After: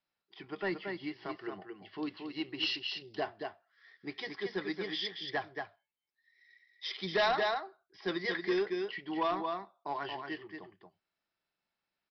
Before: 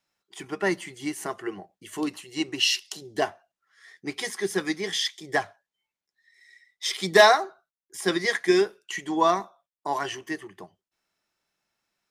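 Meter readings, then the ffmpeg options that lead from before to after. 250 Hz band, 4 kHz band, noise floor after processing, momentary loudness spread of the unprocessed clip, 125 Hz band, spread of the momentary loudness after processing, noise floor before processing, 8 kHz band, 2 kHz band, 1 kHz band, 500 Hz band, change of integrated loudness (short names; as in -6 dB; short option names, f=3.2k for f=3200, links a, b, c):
-8.5 dB, -9.5 dB, under -85 dBFS, 16 LU, -8.5 dB, 14 LU, under -85 dBFS, under -25 dB, -10.0 dB, -10.0 dB, -10.5 dB, -10.5 dB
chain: -af "aecho=1:1:228:0.501,aresample=11025,asoftclip=type=tanh:threshold=-15.5dB,aresample=44100,volume=-8.5dB"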